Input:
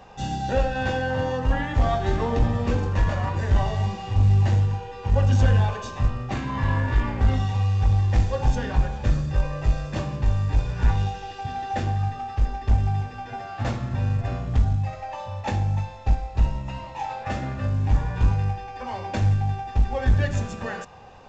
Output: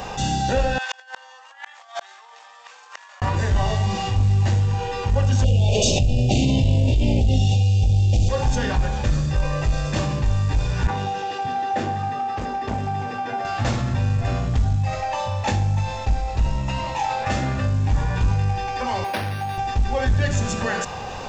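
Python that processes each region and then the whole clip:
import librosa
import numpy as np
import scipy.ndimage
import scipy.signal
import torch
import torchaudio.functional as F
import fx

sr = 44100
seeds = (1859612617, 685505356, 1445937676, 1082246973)

y = fx.chain(x, sr, fx.highpass(hz=860.0, slope=24),
    fx.over_compress(threshold_db=-35.0, ratio=-0.5),
    fx.gate_flip(shuts_db=-28.0, range_db=-41), at=(0.78, 3.22))
y = fx.chain(y, sr, fx.ellip_bandstop(low_hz=690.0, high_hz=2700.0, order=3, stop_db=60),
    fx.env_flatten(amount_pct=70), at=(5.44, 8.29))
y = fx.chain(y, sr, fx.highpass(hz=220.0, slope=12),
    fx.high_shelf(hz=2500.0, db=-12.0), at=(10.87, 13.45))
y = fx.chain(y, sr, fx.highpass(hz=760.0, slope=6),
    fx.resample_linear(factor=6), at=(19.04, 19.58))
y = fx.high_shelf(y, sr, hz=3900.0, db=9.5)
y = fx.env_flatten(y, sr, amount_pct=50)
y = y * 10.0 ** (-2.0 / 20.0)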